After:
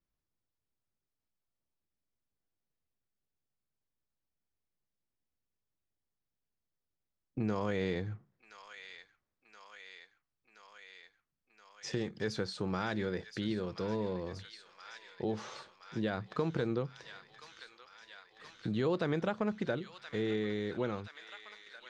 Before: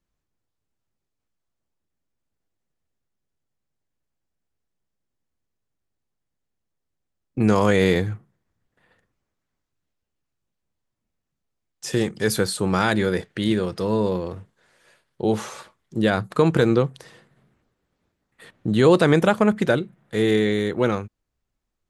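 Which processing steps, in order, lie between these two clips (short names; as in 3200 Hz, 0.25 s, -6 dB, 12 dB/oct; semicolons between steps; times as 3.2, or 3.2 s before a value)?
Chebyshev low-pass 5600 Hz, order 3; on a send: thin delay 1.024 s, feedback 77%, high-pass 1700 Hz, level -12 dB; on the sum: compressor 2:1, threshold -26 dBFS, peak gain reduction 8.5 dB; gain -8.5 dB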